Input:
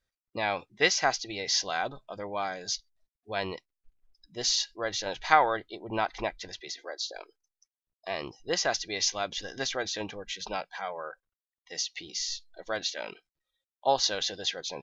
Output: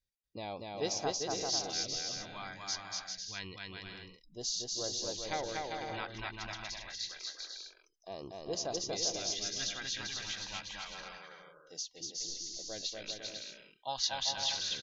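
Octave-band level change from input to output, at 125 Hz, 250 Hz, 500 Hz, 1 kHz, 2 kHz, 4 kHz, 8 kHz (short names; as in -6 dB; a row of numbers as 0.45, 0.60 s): -3.0 dB, -5.5 dB, -8.0 dB, -11.5 dB, -10.5 dB, -4.0 dB, n/a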